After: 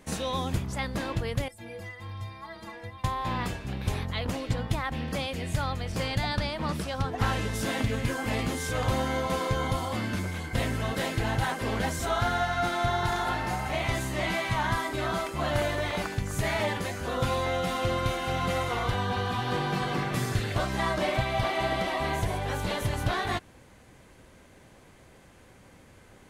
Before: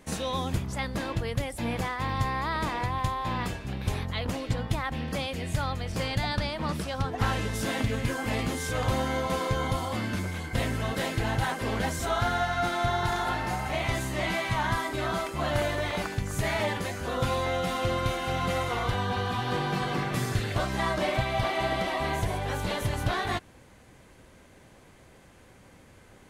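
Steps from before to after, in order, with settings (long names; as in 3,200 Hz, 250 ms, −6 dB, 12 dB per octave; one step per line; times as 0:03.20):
0:01.48–0:03.04: stiff-string resonator 100 Hz, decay 0.42 s, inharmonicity 0.03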